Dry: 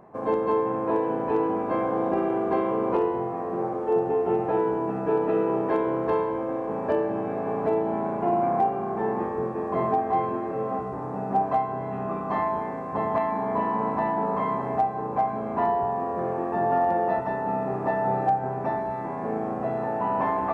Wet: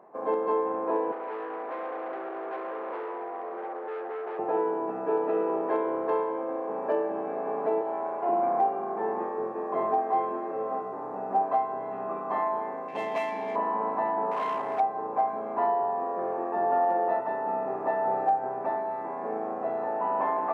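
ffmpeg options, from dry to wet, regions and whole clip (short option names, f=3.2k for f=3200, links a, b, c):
-filter_complex "[0:a]asettb=1/sr,asplit=3[a][b][c];[a]atrim=end=1.124[d];[b]atrim=start=1.12:end=4.39,asetpts=PTS-STARTPTS,afade=t=in:d=0.004:c=qsin,afade=t=out:st=3.266:d=0.004:c=qsin,asoftclip=type=hard:threshold=-28.5dB,highpass=380,lowpass=2.1k[e];[c]atrim=start=4.386[f];[d][e]acrossfade=d=0.004:c1=hsin:c2=qsin[g];[g][f]acrossfade=d=0.004:c1=qsin:c2=hsin,asettb=1/sr,asplit=3[h][i][j];[h]atrim=end=7.814[k];[i]atrim=start=7.81:end=8.29,asetpts=PTS-STARTPTS,afade=t=in:d=0.004:c=qsin,afade=t=out:st=0.476:d=0.004:c=qsin,highpass=410,aeval=exprs='val(0)+0.00891*(sin(2*PI*60*n/s)+sin(2*PI*2*60*n/s)/2+sin(2*PI*3*60*n/s)/3+sin(2*PI*4*60*n/s)/4+sin(2*PI*5*60*n/s)/5)':c=same[l];[j]atrim=start=8.286[m];[k][l]acrossfade=d=0.004:c1=hsin:c2=qsin[n];[n][m]acrossfade=d=0.004:c1=qsin:c2=hsin,asettb=1/sr,asplit=3[o][p][q];[o]atrim=end=12.884[r];[p]atrim=start=12.88:end=13.56,asetpts=PTS-STARTPTS,afade=t=in:d=0.004:c=qsin,afade=t=out:st=0.676:d=0.004:c=qsin,highshelf=f=1.9k:t=q:w=3:g=13.5,adynamicsmooth=sensitivity=7.5:basefreq=2.2k,aeval=exprs='clip(val(0),-1,0.1)':c=same[s];[q]atrim=start=13.556[t];[r][s]acrossfade=d=0.004:c1=hsin:c2=qsin[u];[u][t]acrossfade=d=0.004:c1=qsin:c2=hsin,asettb=1/sr,asplit=3[v][w][x];[v]atrim=end=14.314[y];[w]atrim=start=14.31:end=14.8,asetpts=PTS-STARTPTS,afade=t=in:d=0.004:c=qsin,afade=t=out:st=0.486:d=0.004:c=qsin,highshelf=f=2.3k:g=11,bandreject=f=50:t=h:w=6,bandreject=f=100:t=h:w=6,bandreject=f=150:t=h:w=6,bandreject=f=200:t=h:w=6,bandreject=f=250:t=h:w=6,bandreject=f=300:t=h:w=6,bandreject=f=350:t=h:w=6,bandreject=f=400:t=h:w=6,bandreject=f=450:t=h:w=6,volume=23.5dB,asoftclip=hard,volume=-23.5dB[z];[x]atrim=start=14.796[aa];[y][z]acrossfade=d=0.004:c1=hsin:c2=qsin[ab];[ab][aa]acrossfade=d=0.004:c1=qsin:c2=hsin,highpass=410,highshelf=f=2.3k:g=-11"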